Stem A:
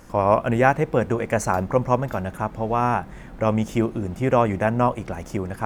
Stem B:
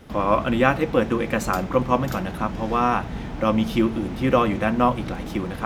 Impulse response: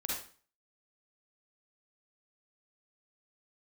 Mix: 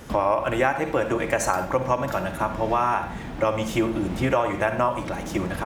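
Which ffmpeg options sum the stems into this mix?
-filter_complex "[0:a]highpass=f=680:p=1,volume=1.5dB,asplit=3[a][b][c];[b]volume=-9dB[d];[1:a]volume=-1,adelay=0.9,volume=3dB,asplit=2[e][f];[f]volume=-18dB[g];[c]apad=whole_len=249247[h];[e][h]sidechaincompress=threshold=-25dB:ratio=8:attack=5.4:release=1030[i];[2:a]atrim=start_sample=2205[j];[d][g]amix=inputs=2:normalize=0[k];[k][j]afir=irnorm=-1:irlink=0[l];[a][i][l]amix=inputs=3:normalize=0,acompressor=threshold=-17dB:ratio=6"

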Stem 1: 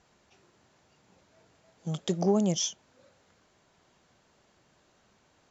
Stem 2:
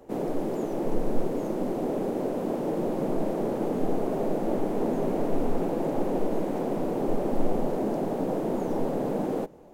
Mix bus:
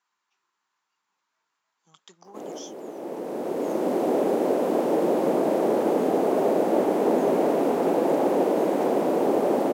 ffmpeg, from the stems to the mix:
-filter_complex "[0:a]lowshelf=f=790:t=q:w=3:g=-8.5,volume=-13dB,asplit=2[a][b];[1:a]acontrast=38,adelay=2250,volume=2.5dB[c];[b]apad=whole_len=528421[d];[c][d]sidechaincompress=threshold=-54dB:ratio=10:attack=16:release=1150[e];[a][e]amix=inputs=2:normalize=0,highpass=310"

